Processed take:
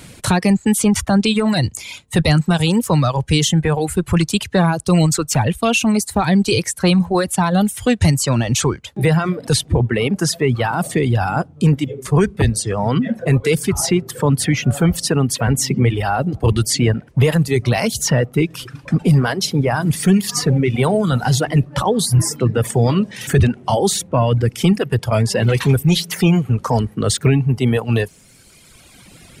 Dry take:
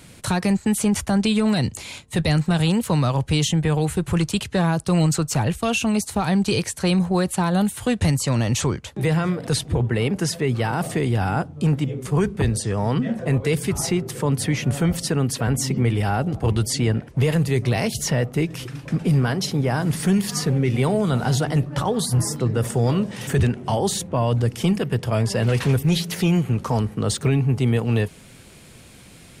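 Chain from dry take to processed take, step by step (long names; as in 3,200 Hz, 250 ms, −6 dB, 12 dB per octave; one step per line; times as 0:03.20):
reverb reduction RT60 1.8 s
level +6.5 dB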